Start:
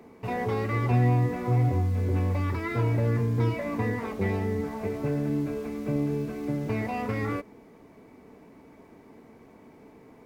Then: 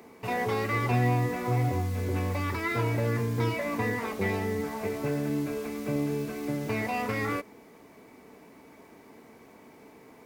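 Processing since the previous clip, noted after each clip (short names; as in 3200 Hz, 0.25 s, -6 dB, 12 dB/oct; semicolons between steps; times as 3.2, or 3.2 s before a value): tilt +2 dB/oct; gain +2 dB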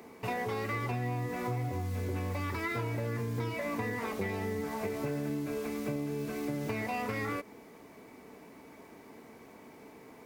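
compressor, threshold -31 dBFS, peak gain reduction 10 dB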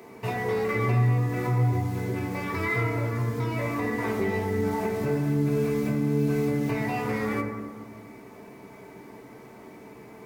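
reverb RT60 1.6 s, pre-delay 4 ms, DRR -0.5 dB; gain +2 dB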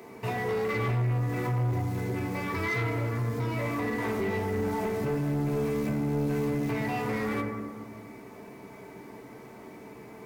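soft clip -23.5 dBFS, distortion -13 dB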